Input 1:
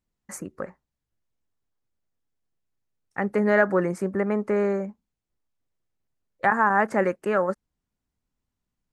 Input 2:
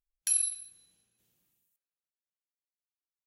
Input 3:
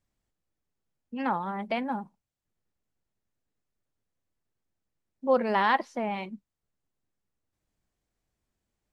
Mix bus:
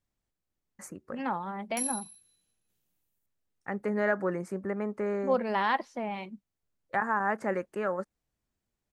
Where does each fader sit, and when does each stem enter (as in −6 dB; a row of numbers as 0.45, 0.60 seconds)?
−8.0, −6.0, −3.5 decibels; 0.50, 1.50, 0.00 seconds